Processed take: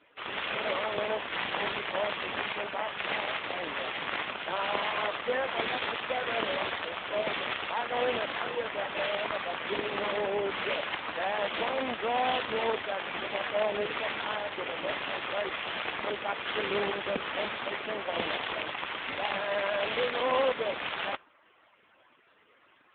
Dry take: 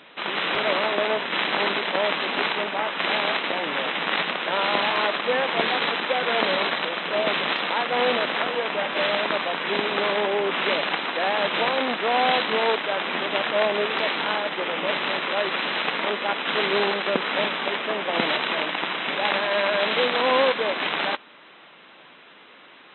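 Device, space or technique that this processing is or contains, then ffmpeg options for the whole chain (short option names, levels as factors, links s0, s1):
mobile call with aggressive noise cancelling: -af "highpass=110,afftdn=nr=14:nf=-45,volume=0.501" -ar 8000 -c:a libopencore_amrnb -b:a 7950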